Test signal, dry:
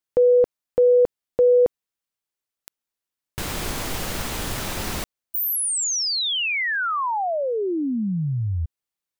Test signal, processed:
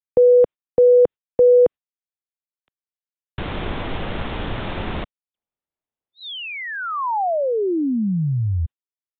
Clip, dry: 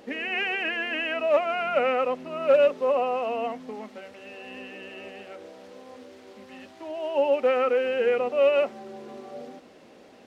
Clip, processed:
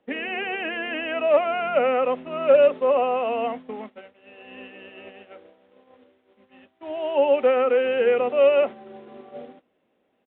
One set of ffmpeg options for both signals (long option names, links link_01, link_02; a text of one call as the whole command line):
ffmpeg -i in.wav -filter_complex "[0:a]acrossover=split=170|660|940[link_01][link_02][link_03][link_04];[link_04]acompressor=threshold=-37dB:ratio=6:attack=40:release=39:detection=rms[link_05];[link_01][link_02][link_03][link_05]amix=inputs=4:normalize=0,agate=range=-22dB:threshold=-36dB:ratio=3:release=139:detection=peak,aresample=8000,aresample=44100,volume=3.5dB" out.wav